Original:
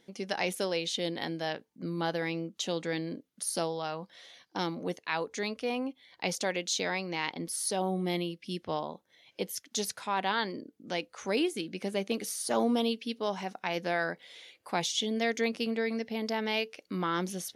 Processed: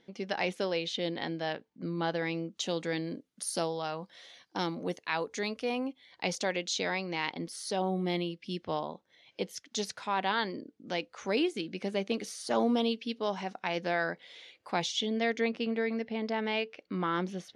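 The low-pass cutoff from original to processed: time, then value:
2.06 s 4.3 kHz
2.81 s 10 kHz
5.62 s 10 kHz
6.74 s 5.9 kHz
14.77 s 5.9 kHz
15.50 s 3.2 kHz

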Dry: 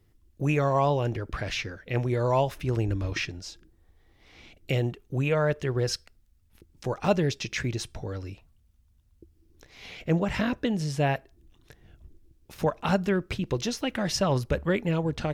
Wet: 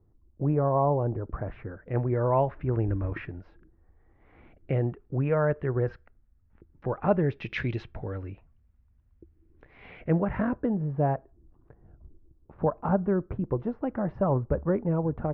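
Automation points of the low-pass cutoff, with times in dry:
low-pass 24 dB/octave
1.28 s 1.1 kHz
2.22 s 1.7 kHz
7.24 s 1.7 kHz
7.65 s 3.8 kHz
7.93 s 2.1 kHz
9.95 s 2.1 kHz
10.79 s 1.2 kHz

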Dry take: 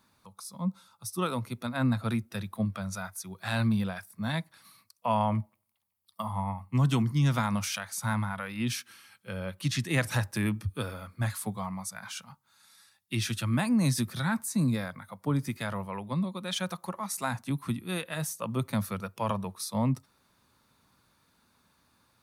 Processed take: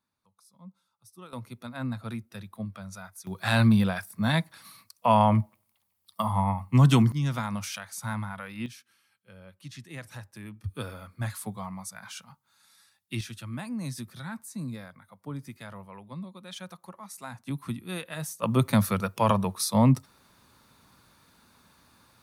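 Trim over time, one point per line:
-17 dB
from 1.33 s -6 dB
from 3.27 s +6.5 dB
from 7.12 s -3 dB
from 8.66 s -14 dB
from 10.64 s -2 dB
from 13.21 s -9 dB
from 17.47 s -2 dB
from 18.43 s +7.5 dB

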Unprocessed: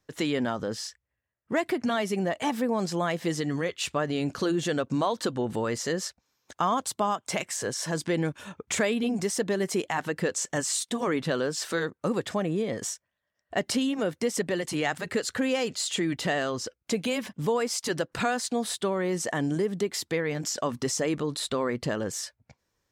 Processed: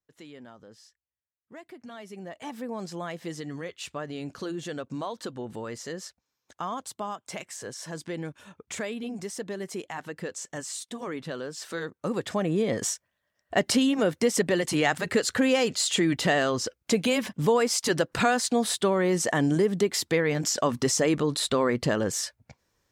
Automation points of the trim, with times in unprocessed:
1.66 s -19 dB
2.73 s -7.5 dB
11.53 s -7.5 dB
12.71 s +4 dB

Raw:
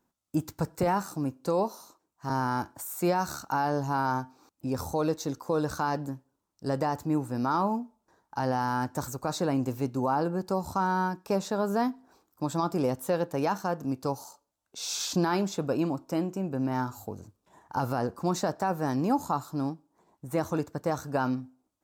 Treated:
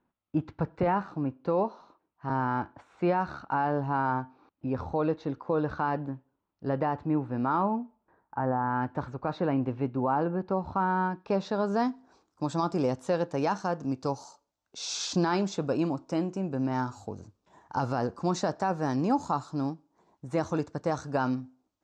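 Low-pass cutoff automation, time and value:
low-pass 24 dB/octave
7.83 s 3.1 kHz
8.59 s 1.5 kHz
8.86 s 3 kHz
10.97 s 3 kHz
11.88 s 6.7 kHz

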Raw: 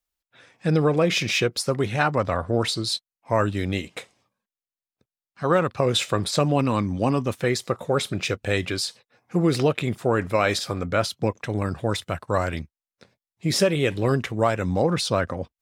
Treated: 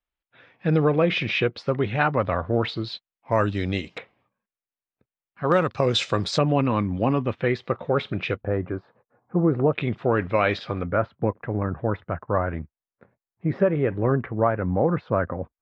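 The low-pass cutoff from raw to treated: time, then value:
low-pass 24 dB/octave
3.3 kHz
from 3.32 s 5.5 kHz
from 3.98 s 2.7 kHz
from 5.52 s 6.1 kHz
from 6.38 s 3.1 kHz
from 8.41 s 1.3 kHz
from 9.73 s 3.3 kHz
from 10.88 s 1.7 kHz

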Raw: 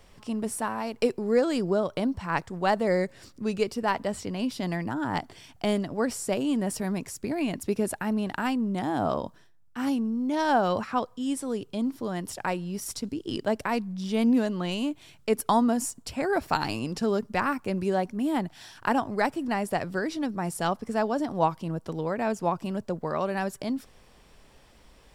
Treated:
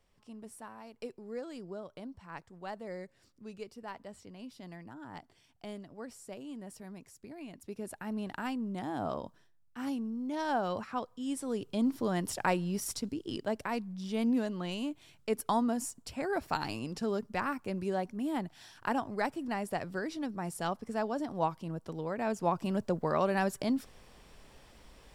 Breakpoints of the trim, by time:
7.56 s -17.5 dB
8.20 s -8.5 dB
11.09 s -8.5 dB
11.93 s 0 dB
12.67 s 0 dB
13.42 s -7 dB
22.07 s -7 dB
22.77 s -0.5 dB

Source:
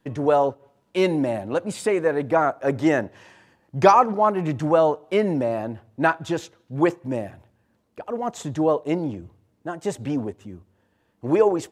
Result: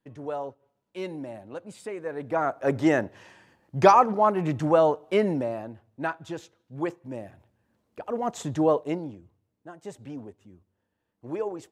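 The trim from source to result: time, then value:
1.98 s -14 dB
2.63 s -2 dB
5.24 s -2 dB
5.73 s -10 dB
7.11 s -10 dB
8.08 s -1.5 dB
8.77 s -1.5 dB
9.20 s -13 dB

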